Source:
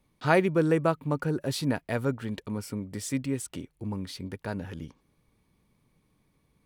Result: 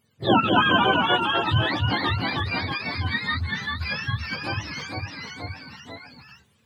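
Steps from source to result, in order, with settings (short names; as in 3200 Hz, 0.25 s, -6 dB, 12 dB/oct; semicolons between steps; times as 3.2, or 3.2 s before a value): spectrum mirrored in octaves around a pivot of 710 Hz; echoes that change speed 0.194 s, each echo -1 st, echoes 3; gain +5.5 dB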